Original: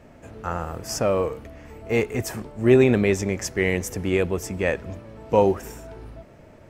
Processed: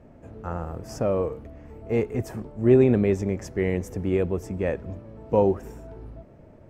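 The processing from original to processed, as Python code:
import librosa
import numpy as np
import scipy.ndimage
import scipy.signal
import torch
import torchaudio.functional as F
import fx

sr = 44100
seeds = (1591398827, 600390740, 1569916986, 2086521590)

y = fx.tilt_shelf(x, sr, db=7.0, hz=1200.0)
y = y * librosa.db_to_amplitude(-7.0)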